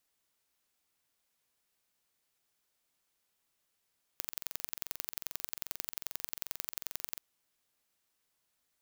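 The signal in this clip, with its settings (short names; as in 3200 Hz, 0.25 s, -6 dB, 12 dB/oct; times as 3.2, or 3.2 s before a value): pulse train 22.5/s, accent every 2, -8 dBFS 3.01 s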